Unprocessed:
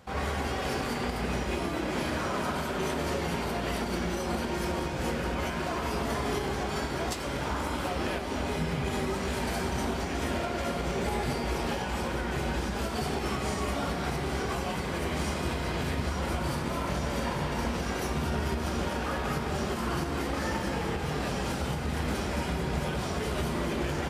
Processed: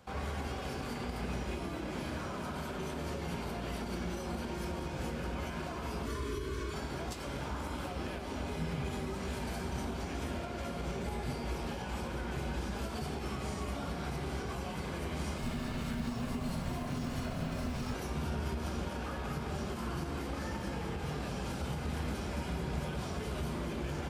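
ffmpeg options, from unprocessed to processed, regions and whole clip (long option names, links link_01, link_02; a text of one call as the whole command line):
ffmpeg -i in.wav -filter_complex "[0:a]asettb=1/sr,asplit=3[link_01][link_02][link_03];[link_01]atrim=end=6.064[link_04];[link_02]atrim=start=6.06:end=6.74,asetpts=PTS-STARTPTS,afade=type=in:duration=0.004:curve=qsin,afade=type=out:start_time=0.676:duration=0.004:curve=qsin,asuperstop=centerf=750:order=12:qfactor=3.3,aecho=1:1:2.7:0.68,atrim=end_sample=29988[link_05];[link_03]atrim=start=6.736[link_06];[link_04][link_05]acrossfade=duration=0.004:curve1=hsin:curve2=qsin[link_07];[link_07][link_06]acrossfade=duration=0.004:curve1=qsin:curve2=hsin,asettb=1/sr,asplit=3[link_08][link_09][link_10];[link_08]atrim=end=15.384[link_11];[link_09]atrim=start=15.38:end=17.94,asetpts=PTS-STARTPTS,afade=type=in:duration=0.004:curve=qsin,afade=type=out:start_time=2.556:duration=0.004:curve=qsin,acrusher=bits=7:mode=log:mix=0:aa=0.000001,afreqshift=-310[link_12];[link_10]atrim=start=17.936[link_13];[link_11][link_12]acrossfade=duration=0.004:curve1=hsin:curve2=qsin[link_14];[link_14][link_13]acrossfade=duration=0.004:curve1=qsin:curve2=hsin,bandreject=frequency=1900:width=17,acrossover=split=230[link_15][link_16];[link_16]acompressor=threshold=-34dB:ratio=6[link_17];[link_15][link_17]amix=inputs=2:normalize=0,volume=-4.5dB" out.wav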